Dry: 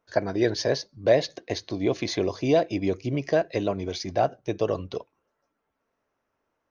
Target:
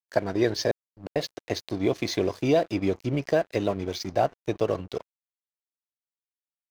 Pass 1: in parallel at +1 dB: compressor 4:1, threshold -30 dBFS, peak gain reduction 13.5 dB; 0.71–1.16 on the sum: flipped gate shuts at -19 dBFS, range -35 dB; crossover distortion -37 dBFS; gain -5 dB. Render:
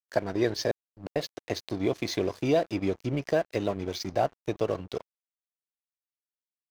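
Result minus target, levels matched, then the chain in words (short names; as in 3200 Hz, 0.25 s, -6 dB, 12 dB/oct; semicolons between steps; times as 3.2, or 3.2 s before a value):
compressor: peak gain reduction +7 dB
in parallel at +1 dB: compressor 4:1, threshold -20.5 dBFS, peak gain reduction 6.5 dB; 0.71–1.16 on the sum: flipped gate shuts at -19 dBFS, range -35 dB; crossover distortion -37 dBFS; gain -5 dB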